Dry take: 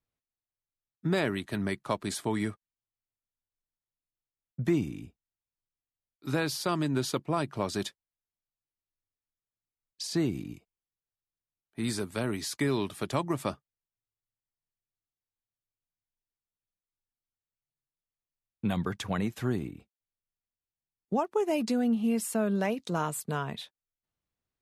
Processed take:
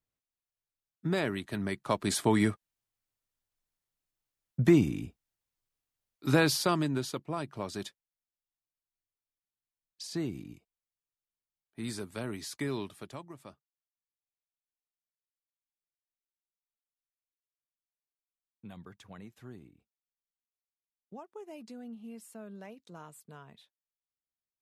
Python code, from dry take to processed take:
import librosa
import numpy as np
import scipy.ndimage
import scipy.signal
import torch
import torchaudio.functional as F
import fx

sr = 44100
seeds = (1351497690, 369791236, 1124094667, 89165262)

y = fx.gain(x, sr, db=fx.line((1.69, -2.5), (2.19, 5.0), (6.52, 5.0), (7.13, -6.0), (12.78, -6.0), (13.34, -18.0)))